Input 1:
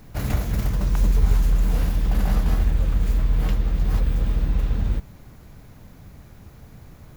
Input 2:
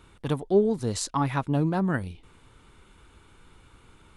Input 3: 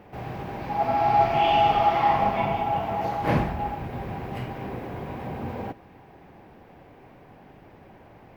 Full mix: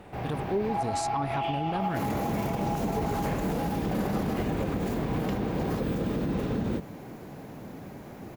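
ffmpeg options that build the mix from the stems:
-filter_complex "[0:a]highpass=150,equalizer=f=350:t=o:w=2.4:g=11,adelay=1800,volume=-0.5dB[a];[1:a]volume=-3.5dB[b];[2:a]acompressor=threshold=-27dB:ratio=6,volume=1dB[c];[a][b][c]amix=inputs=3:normalize=0,alimiter=limit=-20.5dB:level=0:latency=1:release=63"

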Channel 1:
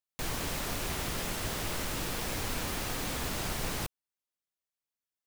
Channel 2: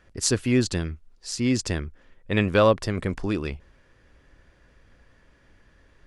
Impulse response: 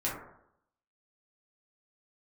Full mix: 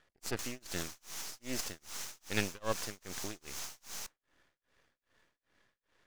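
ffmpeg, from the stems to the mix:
-filter_complex "[0:a]highpass=f=790:w=0.5412,highpass=f=790:w=1.3066,equalizer=f=6.2k:t=o:w=0.88:g=14,alimiter=level_in=4.5dB:limit=-24dB:level=0:latency=1:release=186,volume=-4.5dB,adelay=200,volume=0.5dB,asplit=2[a][b];[b]volume=-22.5dB[c];[1:a]highpass=f=480:p=1,volume=-3dB[d];[2:a]atrim=start_sample=2205[e];[c][e]afir=irnorm=-1:irlink=0[f];[a][d][f]amix=inputs=3:normalize=0,aeval=exprs='max(val(0),0)':c=same,tremolo=f=2.5:d=0.99"

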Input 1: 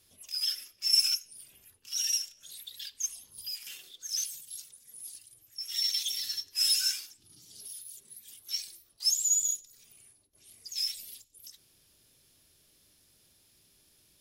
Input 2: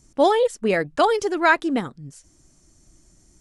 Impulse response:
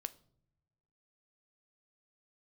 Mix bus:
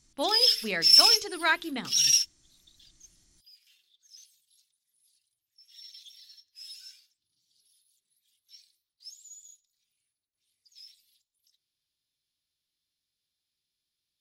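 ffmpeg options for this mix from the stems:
-filter_complex "[0:a]volume=1.5dB[a];[1:a]bandreject=f=50:t=h:w=6,bandreject=f=100:t=h:w=6,bandreject=f=150:t=h:w=6,bandreject=f=200:t=h:w=6,bandreject=f=250:t=h:w=6,bandreject=f=300:t=h:w=6,bandreject=f=350:t=h:w=6,bandreject=f=400:t=h:w=6,bandreject=f=450:t=h:w=6,volume=-11.5dB,asplit=3[b][c][d];[c]volume=-16.5dB[e];[d]apad=whole_len=626438[f];[a][f]sidechaingate=range=-28dB:threshold=-59dB:ratio=16:detection=peak[g];[2:a]atrim=start_sample=2205[h];[e][h]afir=irnorm=-1:irlink=0[i];[g][b][i]amix=inputs=3:normalize=0,equalizer=f=500:t=o:w=1:g=-5,equalizer=f=2k:t=o:w=1:g=4,equalizer=f=4k:t=o:w=1:g=12,asoftclip=type=tanh:threshold=-7.5dB"

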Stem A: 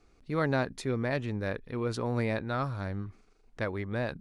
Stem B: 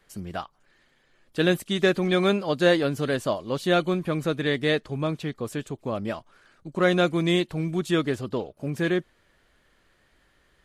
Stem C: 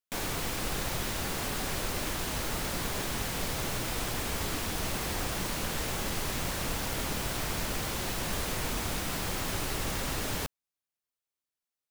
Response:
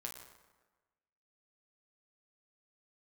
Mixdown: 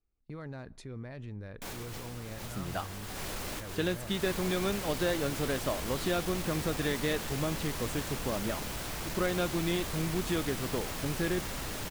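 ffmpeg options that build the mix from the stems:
-filter_complex "[0:a]lowshelf=f=140:g=11,volume=-11dB,asplit=3[a][b][c];[b]volume=-23.5dB[d];[1:a]acompressor=threshold=-26dB:ratio=3,adelay=2400,volume=-3.5dB[e];[2:a]adelay=1500,volume=2.5dB,asplit=2[f][g];[g]volume=-17.5dB[h];[c]apad=whole_len=591079[i];[f][i]sidechaincompress=threshold=-52dB:ratio=8:attack=16:release=144[j];[a][j]amix=inputs=2:normalize=0,asoftclip=type=hard:threshold=-26dB,alimiter=level_in=10dB:limit=-24dB:level=0:latency=1:release=29,volume=-10dB,volume=0dB[k];[3:a]atrim=start_sample=2205[l];[d][h]amix=inputs=2:normalize=0[m];[m][l]afir=irnorm=-1:irlink=0[n];[e][k][n]amix=inputs=3:normalize=0,agate=range=-17dB:threshold=-52dB:ratio=16:detection=peak"

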